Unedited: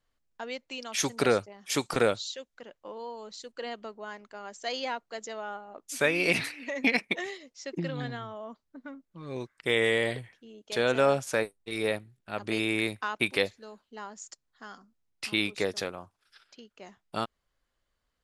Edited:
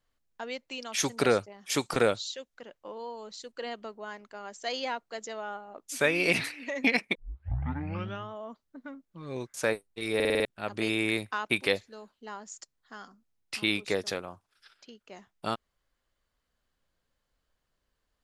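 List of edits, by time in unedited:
7.15 tape start 1.16 s
9.54–11.24 cut
11.85 stutter in place 0.05 s, 6 plays

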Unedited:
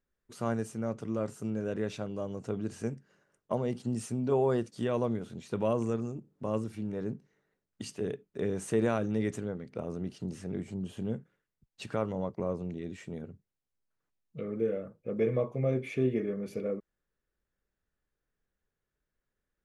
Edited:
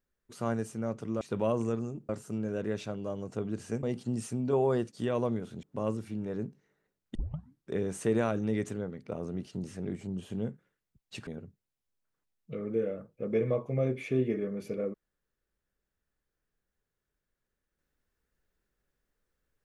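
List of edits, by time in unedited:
2.95–3.62 cut
5.42–6.3 move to 1.21
7.82 tape start 0.57 s
11.94–13.13 cut

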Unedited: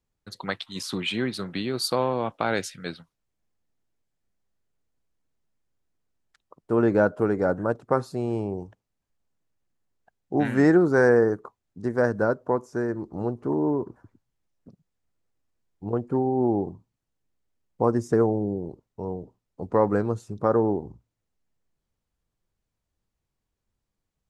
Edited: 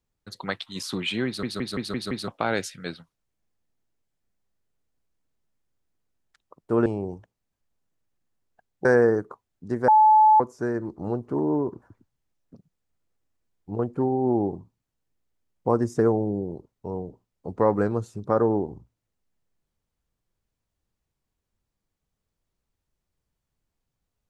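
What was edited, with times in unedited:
1.26 stutter in place 0.17 s, 6 plays
6.86–8.35 cut
10.34–10.99 cut
12.02–12.54 bleep 863 Hz -12 dBFS

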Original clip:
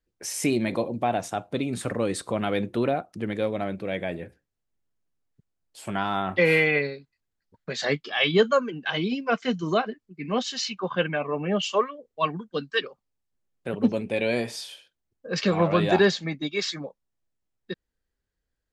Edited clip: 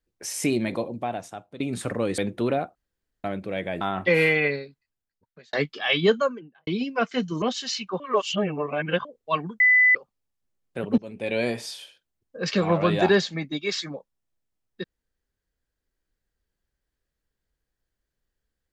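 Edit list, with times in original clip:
0.57–1.6 fade out linear, to -15.5 dB
2.18–2.54 cut
3.11–3.6 room tone
4.17–6.12 cut
6.87–7.84 fade out
8.38–8.98 studio fade out
9.73–10.32 cut
10.9–11.95 reverse
12.5–12.85 bleep 2000 Hz -13.5 dBFS
13.88–14.28 fade in, from -21 dB

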